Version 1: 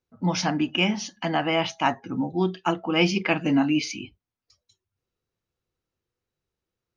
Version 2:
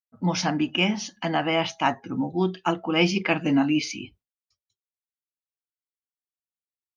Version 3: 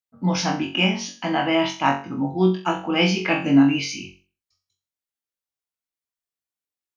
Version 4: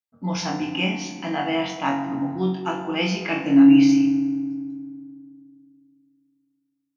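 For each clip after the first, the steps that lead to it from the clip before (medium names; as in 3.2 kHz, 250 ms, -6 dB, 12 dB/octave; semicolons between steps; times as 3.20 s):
expander -51 dBFS
flutter echo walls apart 3.7 m, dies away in 0.36 s
FDN reverb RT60 2.1 s, low-frequency decay 1.35×, high-frequency decay 0.5×, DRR 6 dB; trim -4.5 dB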